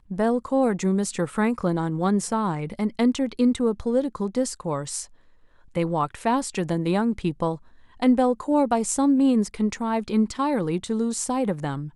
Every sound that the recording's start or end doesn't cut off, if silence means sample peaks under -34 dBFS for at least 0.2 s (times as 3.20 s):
5.75–7.56 s